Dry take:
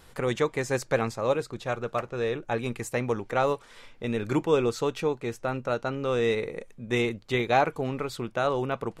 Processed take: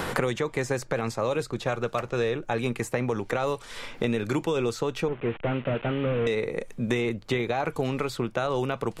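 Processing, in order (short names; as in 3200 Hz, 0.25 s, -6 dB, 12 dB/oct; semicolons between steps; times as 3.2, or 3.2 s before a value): 5.08–6.27 delta modulation 16 kbps, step -42.5 dBFS; limiter -19.5 dBFS, peak gain reduction 11 dB; three-band squash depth 100%; gain +2 dB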